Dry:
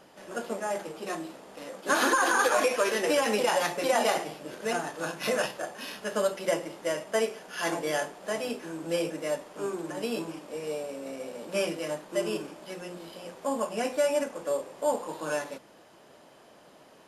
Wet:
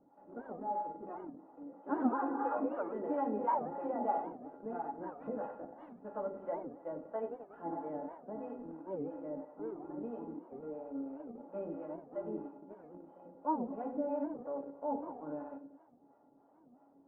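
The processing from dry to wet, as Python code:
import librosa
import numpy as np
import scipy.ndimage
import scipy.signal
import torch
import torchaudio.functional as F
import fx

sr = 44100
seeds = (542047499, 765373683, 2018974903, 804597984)

p1 = x + fx.echo_feedback(x, sr, ms=93, feedback_pct=55, wet_db=-9.0, dry=0)
p2 = fx.harmonic_tremolo(p1, sr, hz=3.0, depth_pct=70, crossover_hz=510.0)
p3 = fx.quant_dither(p2, sr, seeds[0], bits=6, dither='none')
p4 = p2 + (p3 * librosa.db_to_amplitude(-9.0))
p5 = scipy.signal.sosfilt(scipy.signal.butter(4, 1000.0, 'lowpass', fs=sr, output='sos'), p4)
p6 = fx.comb_fb(p5, sr, f0_hz=280.0, decay_s=0.15, harmonics='odd', damping=0.0, mix_pct=90)
p7 = fx.record_warp(p6, sr, rpm=78.0, depth_cents=250.0)
y = p7 * librosa.db_to_amplitude(6.0)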